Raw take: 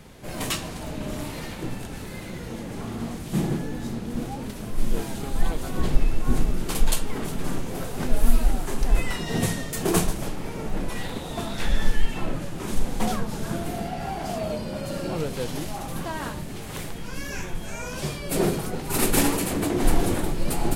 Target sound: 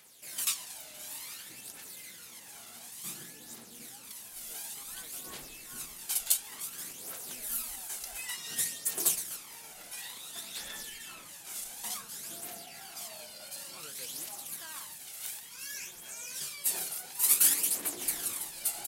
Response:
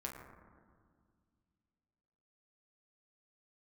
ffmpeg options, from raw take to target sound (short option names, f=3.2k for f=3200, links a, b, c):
-af "aderivative,aphaser=in_gain=1:out_gain=1:delay=1.5:decay=0.47:speed=0.51:type=triangular,atempo=1.1"